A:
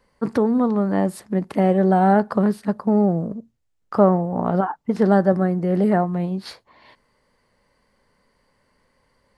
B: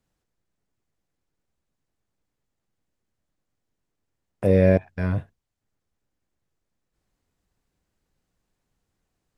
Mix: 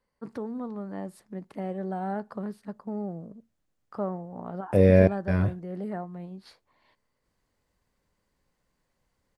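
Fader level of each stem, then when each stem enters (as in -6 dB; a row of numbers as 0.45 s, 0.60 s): -16.0 dB, -0.5 dB; 0.00 s, 0.30 s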